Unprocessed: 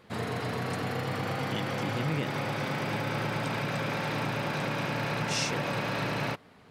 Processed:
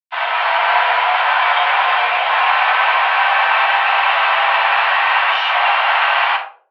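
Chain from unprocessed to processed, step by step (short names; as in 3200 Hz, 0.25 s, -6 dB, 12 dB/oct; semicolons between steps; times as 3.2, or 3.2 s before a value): AGC gain up to 8.5 dB; limiter -19 dBFS, peak gain reduction 10 dB; bit-crush 5-bit; shoebox room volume 240 m³, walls furnished, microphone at 6.6 m; mistuned SSB +230 Hz 480–3100 Hz; gain +3 dB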